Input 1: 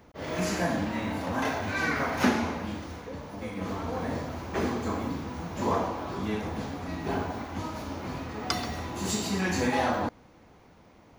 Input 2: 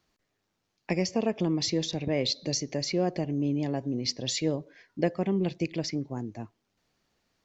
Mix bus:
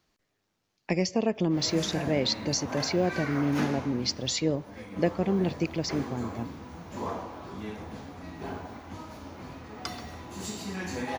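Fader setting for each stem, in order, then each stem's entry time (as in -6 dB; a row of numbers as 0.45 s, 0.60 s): -7.0 dB, +1.0 dB; 1.35 s, 0.00 s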